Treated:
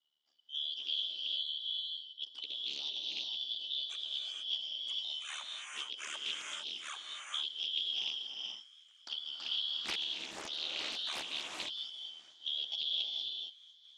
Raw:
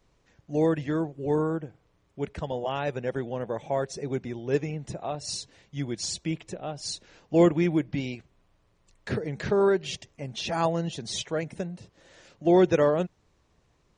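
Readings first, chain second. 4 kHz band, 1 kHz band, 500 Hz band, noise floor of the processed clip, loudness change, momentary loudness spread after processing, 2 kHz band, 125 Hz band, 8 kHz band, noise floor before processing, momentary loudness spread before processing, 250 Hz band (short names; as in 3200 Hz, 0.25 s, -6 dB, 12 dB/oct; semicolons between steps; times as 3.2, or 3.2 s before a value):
+7.5 dB, -18.5 dB, -33.0 dB, -62 dBFS, -8.5 dB, 8 LU, -7.0 dB, under -40 dB, -10.5 dB, -67 dBFS, 15 LU, -34.0 dB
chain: four-band scrambler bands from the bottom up 3412; spectral noise reduction 7 dB; HPF 210 Hz 24 dB/oct; high shelf 6400 Hz -6 dB; notch 520 Hz, Q 12; compressor 10:1, threshold -25 dBFS, peak gain reduction 10 dB; ring modulator 37 Hz; thin delay 0.693 s, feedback 71%, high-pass 2100 Hz, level -23.5 dB; non-linear reverb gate 0.49 s rising, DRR -0.5 dB; Doppler distortion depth 0.56 ms; gain -7 dB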